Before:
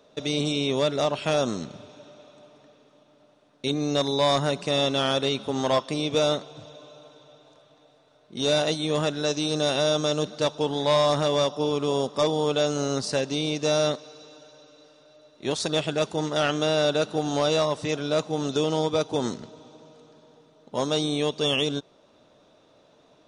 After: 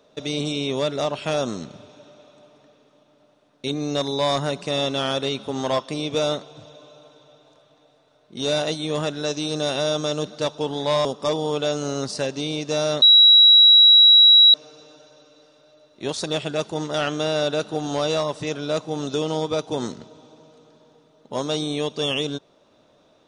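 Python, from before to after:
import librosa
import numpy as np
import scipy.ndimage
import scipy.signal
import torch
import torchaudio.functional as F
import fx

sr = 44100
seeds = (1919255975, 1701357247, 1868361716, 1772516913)

y = fx.edit(x, sr, fx.cut(start_s=11.05, length_s=0.94),
    fx.insert_tone(at_s=13.96, length_s=1.52, hz=3880.0, db=-8.0), tone=tone)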